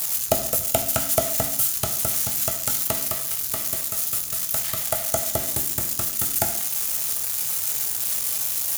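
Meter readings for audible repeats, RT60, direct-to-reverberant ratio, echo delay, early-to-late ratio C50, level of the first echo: none, 0.70 s, 3.5 dB, none, 9.5 dB, none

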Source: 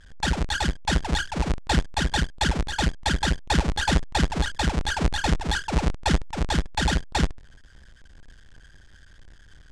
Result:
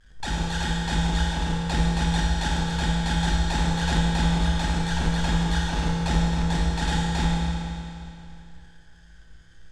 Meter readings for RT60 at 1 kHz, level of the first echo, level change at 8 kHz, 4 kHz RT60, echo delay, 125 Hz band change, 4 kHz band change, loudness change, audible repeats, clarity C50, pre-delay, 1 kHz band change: 2.7 s, none, -2.0 dB, 2.5 s, none, +3.0 dB, -1.5 dB, +0.5 dB, none, -2.0 dB, 6 ms, -1.0 dB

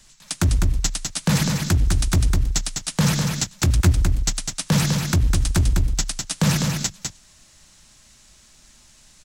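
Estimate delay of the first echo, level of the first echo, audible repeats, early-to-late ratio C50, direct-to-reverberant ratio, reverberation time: 0.203 s, -4.5 dB, 1, none, none, none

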